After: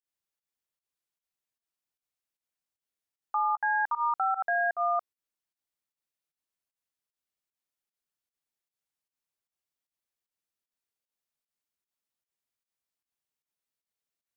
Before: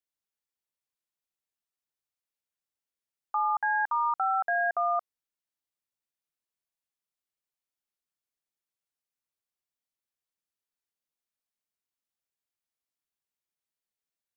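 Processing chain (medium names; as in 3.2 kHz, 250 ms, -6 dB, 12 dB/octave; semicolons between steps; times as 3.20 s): volume shaper 152 bpm, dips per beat 1, -22 dB, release 103 ms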